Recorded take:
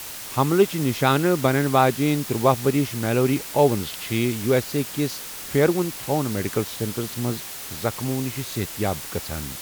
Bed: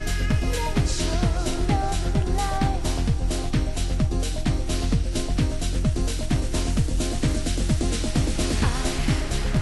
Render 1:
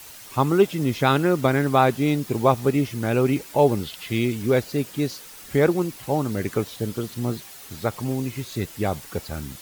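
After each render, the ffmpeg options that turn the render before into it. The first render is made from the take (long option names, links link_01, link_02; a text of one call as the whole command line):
ffmpeg -i in.wav -af "afftdn=noise_reduction=9:noise_floor=-36" out.wav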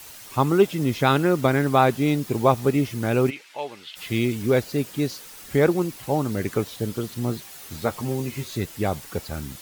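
ffmpeg -i in.wav -filter_complex "[0:a]asplit=3[link_01][link_02][link_03];[link_01]afade=type=out:start_time=3.29:duration=0.02[link_04];[link_02]bandpass=frequency=2500:width_type=q:width=1.2,afade=type=in:start_time=3.29:duration=0.02,afade=type=out:start_time=3.95:duration=0.02[link_05];[link_03]afade=type=in:start_time=3.95:duration=0.02[link_06];[link_04][link_05][link_06]amix=inputs=3:normalize=0,asettb=1/sr,asplit=3[link_07][link_08][link_09];[link_07]atrim=end=7.514[link_10];[link_08]atrim=start=7.51:end=8.57,asetpts=PTS-STARTPTS,afade=type=in:duration=0.004:curve=qsin,afade=type=out:start_time=1.056:duration=0.004:curve=qsin,asplit=2[link_11][link_12];[link_12]adelay=13,volume=-7dB[link_13];[link_11][link_13]amix=inputs=2:normalize=0,atrim=end_sample=46746[link_14];[link_09]atrim=start=8.566[link_15];[link_10][link_14]acrossfade=duration=0.004:curve1=hsin:curve2=qsin[link_16];[link_16][link_15]acrossfade=duration=0.004:curve1=qsin:curve2=hsin" out.wav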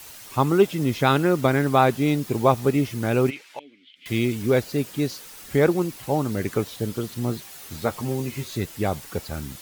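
ffmpeg -i in.wav -filter_complex "[0:a]asettb=1/sr,asplit=3[link_01][link_02][link_03];[link_01]atrim=end=3.594[link_04];[link_02]atrim=start=3.59:end=4.06,asetpts=PTS-STARTPTS,afade=type=in:duration=0.004:curve=qsin,afade=type=out:start_time=0.466:duration=0.004:curve=qsin,asplit=3[link_05][link_06][link_07];[link_05]bandpass=frequency=270:width_type=q:width=8,volume=0dB[link_08];[link_06]bandpass=frequency=2290:width_type=q:width=8,volume=-6dB[link_09];[link_07]bandpass=frequency=3010:width_type=q:width=8,volume=-9dB[link_10];[link_08][link_09][link_10]amix=inputs=3:normalize=0[link_11];[link_03]atrim=start=4.056[link_12];[link_04][link_11]acrossfade=duration=0.004:curve1=hsin:curve2=qsin[link_13];[link_13][link_12]acrossfade=duration=0.004:curve1=qsin:curve2=hsin" out.wav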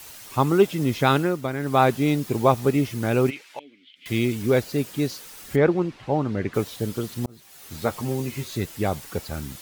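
ffmpeg -i in.wav -filter_complex "[0:a]asplit=3[link_01][link_02][link_03];[link_01]afade=type=out:start_time=5.55:duration=0.02[link_04];[link_02]lowpass=3100,afade=type=in:start_time=5.55:duration=0.02,afade=type=out:start_time=6.53:duration=0.02[link_05];[link_03]afade=type=in:start_time=6.53:duration=0.02[link_06];[link_04][link_05][link_06]amix=inputs=3:normalize=0,asplit=4[link_07][link_08][link_09][link_10];[link_07]atrim=end=1.4,asetpts=PTS-STARTPTS,afade=type=out:start_time=1.16:duration=0.24:silence=0.398107[link_11];[link_08]atrim=start=1.4:end=1.58,asetpts=PTS-STARTPTS,volume=-8dB[link_12];[link_09]atrim=start=1.58:end=7.26,asetpts=PTS-STARTPTS,afade=type=in:duration=0.24:silence=0.398107,afade=type=out:start_time=5.676:duration=0.004:curve=hsin[link_13];[link_10]atrim=start=7.26,asetpts=PTS-STARTPTS,afade=type=in:duration=0.56[link_14];[link_11][link_12][link_13][link_14]concat=n=4:v=0:a=1" out.wav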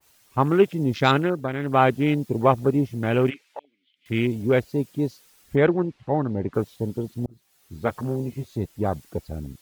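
ffmpeg -i in.wav -af "afwtdn=0.0251,adynamicequalizer=threshold=0.0158:dfrequency=1800:dqfactor=0.7:tfrequency=1800:tqfactor=0.7:attack=5:release=100:ratio=0.375:range=2:mode=boostabove:tftype=highshelf" out.wav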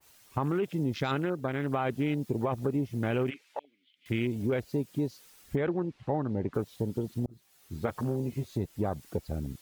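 ffmpeg -i in.wav -af "alimiter=limit=-13dB:level=0:latency=1:release=18,acompressor=threshold=-28dB:ratio=3" out.wav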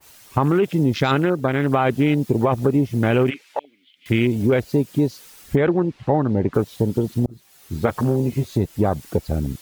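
ffmpeg -i in.wav -af "volume=11.5dB" out.wav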